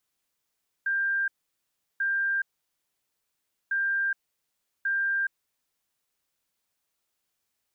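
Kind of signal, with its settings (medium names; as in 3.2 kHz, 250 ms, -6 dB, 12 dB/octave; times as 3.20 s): beep pattern sine 1.59 kHz, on 0.42 s, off 0.72 s, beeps 2, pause 1.29 s, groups 2, -23.5 dBFS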